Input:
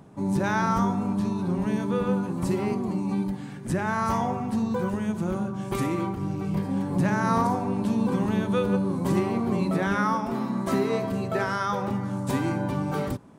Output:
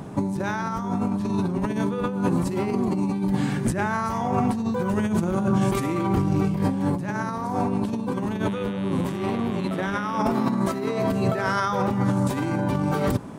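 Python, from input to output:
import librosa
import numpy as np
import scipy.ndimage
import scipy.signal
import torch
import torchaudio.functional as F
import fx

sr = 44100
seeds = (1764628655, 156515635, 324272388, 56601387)

y = fx.over_compress(x, sr, threshold_db=-32.0, ratio=-1.0)
y = fx.dmg_buzz(y, sr, base_hz=100.0, harmonics=38, level_db=-50.0, tilt_db=-2, odd_only=False, at=(8.46, 10.18), fade=0.02)
y = y * librosa.db_to_amplitude(7.5)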